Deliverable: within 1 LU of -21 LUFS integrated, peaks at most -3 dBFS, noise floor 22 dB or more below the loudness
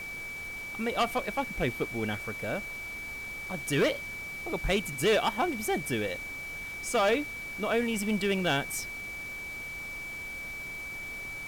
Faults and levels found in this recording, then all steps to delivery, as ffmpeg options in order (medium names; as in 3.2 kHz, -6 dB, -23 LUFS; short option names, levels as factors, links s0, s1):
steady tone 2.3 kHz; tone level -37 dBFS; noise floor -39 dBFS; noise floor target -54 dBFS; loudness -31.5 LUFS; peak level -18.0 dBFS; loudness target -21.0 LUFS
-> -af "bandreject=f=2300:w=30"
-af "afftdn=nr=15:nf=-39"
-af "volume=3.35"